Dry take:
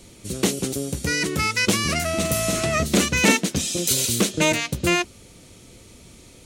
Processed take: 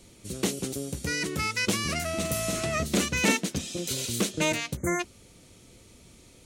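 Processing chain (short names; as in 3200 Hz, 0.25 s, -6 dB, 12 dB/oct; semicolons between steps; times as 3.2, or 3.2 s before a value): 3.57–4.13 high shelf 4200 Hz -> 8400 Hz -9 dB; 4.77–5 spectral delete 2300–5900 Hz; gain -6.5 dB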